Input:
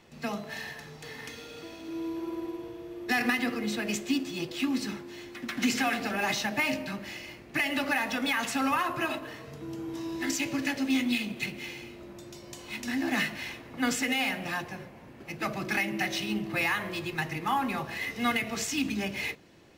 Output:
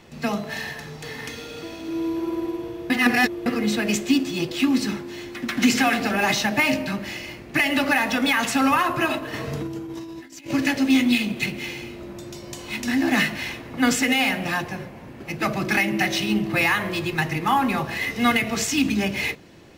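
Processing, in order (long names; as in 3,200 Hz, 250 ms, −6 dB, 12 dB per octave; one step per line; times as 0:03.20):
low-shelf EQ 270 Hz +3 dB
0:02.90–0:03.46: reverse
0:09.33–0:10.51: compressor whose output falls as the input rises −39 dBFS, ratio −0.5
level +7.5 dB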